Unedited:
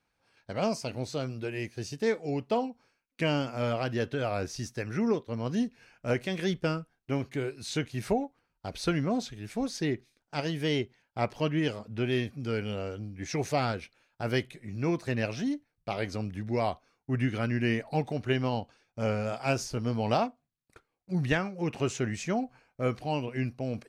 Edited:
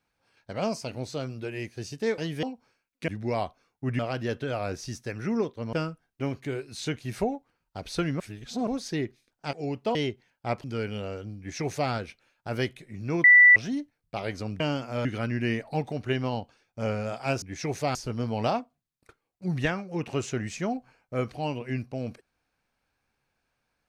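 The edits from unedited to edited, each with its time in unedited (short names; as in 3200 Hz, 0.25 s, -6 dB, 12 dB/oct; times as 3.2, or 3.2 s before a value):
2.18–2.6 swap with 10.42–10.67
3.25–3.7 swap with 16.34–17.25
5.44–6.62 cut
9.09–9.56 reverse
11.36–12.38 cut
13.12–13.65 copy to 19.62
14.98–15.3 bleep 1970 Hz -11 dBFS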